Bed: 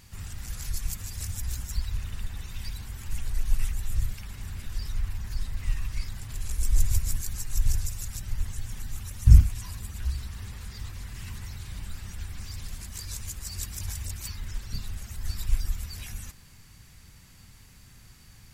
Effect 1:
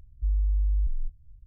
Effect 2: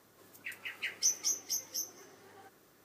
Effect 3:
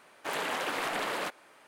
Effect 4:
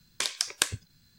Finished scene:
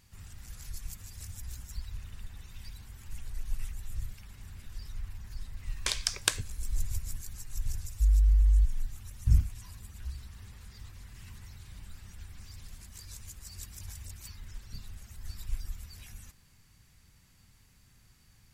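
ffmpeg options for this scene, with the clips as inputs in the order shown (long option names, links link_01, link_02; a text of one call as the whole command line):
ffmpeg -i bed.wav -i cue0.wav -i cue1.wav -i cue2.wav -i cue3.wav -filter_complex "[0:a]volume=-9.5dB[link_01];[1:a]equalizer=frequency=78:width=0.36:gain=11.5[link_02];[4:a]atrim=end=1.18,asetpts=PTS-STARTPTS,volume=-1.5dB,afade=type=in:duration=0.004:curve=hsin,afade=type=out:start_time=1.176:duration=0.004:curve=hsin,adelay=5660[link_03];[link_02]atrim=end=1.46,asetpts=PTS-STARTPTS,volume=-7.5dB,afade=type=in:duration=0.004:curve=hsin,afade=type=out:start_time=1.456:duration=0.004:curve=hsin,adelay=343098S[link_04];[link_01][link_03][link_04]amix=inputs=3:normalize=0" out.wav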